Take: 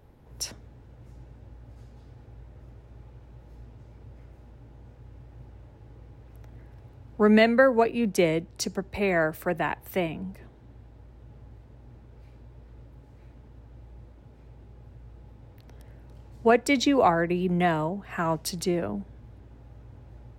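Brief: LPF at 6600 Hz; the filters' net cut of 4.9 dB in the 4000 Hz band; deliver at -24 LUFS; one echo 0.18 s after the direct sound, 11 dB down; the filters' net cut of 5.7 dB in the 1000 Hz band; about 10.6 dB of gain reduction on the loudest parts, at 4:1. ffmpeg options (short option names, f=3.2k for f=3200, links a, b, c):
-af "lowpass=6.6k,equalizer=f=1k:t=o:g=-8.5,equalizer=f=4k:t=o:g=-5.5,acompressor=threshold=-29dB:ratio=4,aecho=1:1:180:0.282,volume=10dB"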